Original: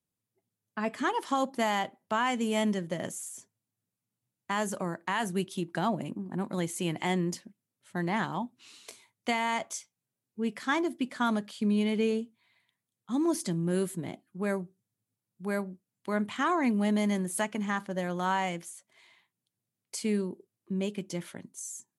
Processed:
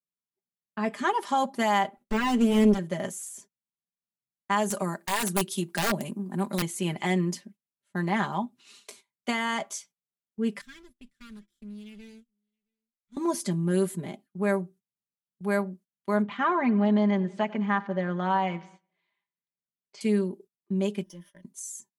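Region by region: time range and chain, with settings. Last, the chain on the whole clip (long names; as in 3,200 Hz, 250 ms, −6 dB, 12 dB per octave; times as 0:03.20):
0:01.97–0:02.79: lower of the sound and its delayed copy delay 3.7 ms + de-essing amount 90% + low shelf with overshoot 510 Hz +7 dB, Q 1.5
0:04.70–0:06.62: high-pass filter 120 Hz 24 dB per octave + high-shelf EQ 5,000 Hz +12 dB + wrap-around overflow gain 21 dB
0:10.61–0:13.17: lower of the sound and its delayed copy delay 0.54 ms + guitar amp tone stack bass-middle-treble 6-0-2 + single-tap delay 668 ms −23 dB
0:16.22–0:20.01: Gaussian smoothing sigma 2.2 samples + repeating echo 95 ms, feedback 58%, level −21 dB
0:21.03–0:21.43: mu-law and A-law mismatch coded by A + EQ curve with evenly spaced ripples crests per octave 1.2, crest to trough 13 dB + downward compressor 2 to 1, threshold −57 dBFS
whole clip: noise gate −53 dBFS, range −18 dB; comb filter 5 ms; dynamic equaliser 890 Hz, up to +3 dB, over −36 dBFS, Q 0.84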